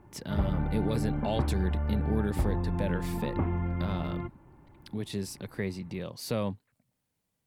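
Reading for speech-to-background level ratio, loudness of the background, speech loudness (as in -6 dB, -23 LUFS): -2.5 dB, -32.5 LUFS, -35.0 LUFS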